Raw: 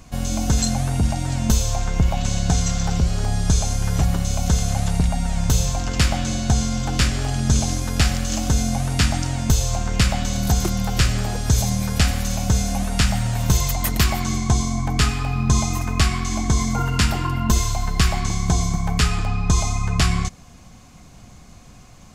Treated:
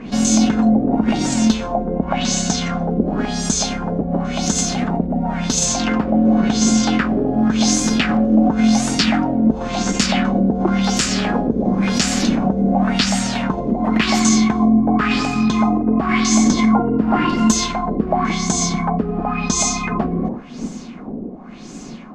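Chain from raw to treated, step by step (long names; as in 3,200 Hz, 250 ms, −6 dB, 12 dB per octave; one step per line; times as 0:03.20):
wind on the microphone 140 Hz −29 dBFS
in parallel at +2 dB: compressor whose output falls as the input rises −22 dBFS, ratio −1
on the sum: auto-filter low-pass sine 0.93 Hz 470–7,500 Hz
low shelf with overshoot 150 Hz −14 dB, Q 3
level −2 dB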